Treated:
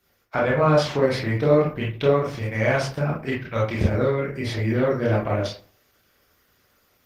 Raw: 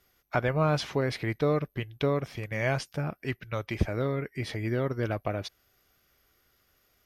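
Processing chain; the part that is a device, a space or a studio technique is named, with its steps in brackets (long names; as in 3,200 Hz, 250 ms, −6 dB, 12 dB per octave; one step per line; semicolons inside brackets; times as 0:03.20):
far-field microphone of a smart speaker (convolution reverb RT60 0.45 s, pre-delay 22 ms, DRR −4 dB; high-pass filter 93 Hz 6 dB per octave; automatic gain control gain up to 3 dB; Opus 16 kbit/s 48,000 Hz)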